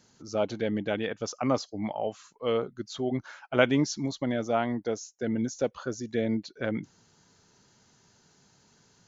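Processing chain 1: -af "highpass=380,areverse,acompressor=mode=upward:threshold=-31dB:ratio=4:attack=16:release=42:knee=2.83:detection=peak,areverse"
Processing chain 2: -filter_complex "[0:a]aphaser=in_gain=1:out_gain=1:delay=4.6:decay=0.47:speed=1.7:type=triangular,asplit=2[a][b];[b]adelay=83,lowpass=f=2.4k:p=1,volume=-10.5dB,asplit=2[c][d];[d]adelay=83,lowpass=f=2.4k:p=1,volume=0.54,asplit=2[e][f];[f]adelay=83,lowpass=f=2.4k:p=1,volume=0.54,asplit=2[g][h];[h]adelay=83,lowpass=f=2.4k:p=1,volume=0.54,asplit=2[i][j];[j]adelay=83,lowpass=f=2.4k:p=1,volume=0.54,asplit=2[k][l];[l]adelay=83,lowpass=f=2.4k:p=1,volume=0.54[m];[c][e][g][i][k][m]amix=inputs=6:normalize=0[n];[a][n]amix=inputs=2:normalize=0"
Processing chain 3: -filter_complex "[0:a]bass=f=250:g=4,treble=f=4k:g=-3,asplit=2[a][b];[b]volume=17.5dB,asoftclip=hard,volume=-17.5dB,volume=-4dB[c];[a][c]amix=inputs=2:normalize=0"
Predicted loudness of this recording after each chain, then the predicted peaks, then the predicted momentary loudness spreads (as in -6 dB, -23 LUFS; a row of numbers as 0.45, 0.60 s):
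-32.0, -29.0, -25.5 LUFS; -7.5, -5.0, -4.0 dBFS; 8, 8, 8 LU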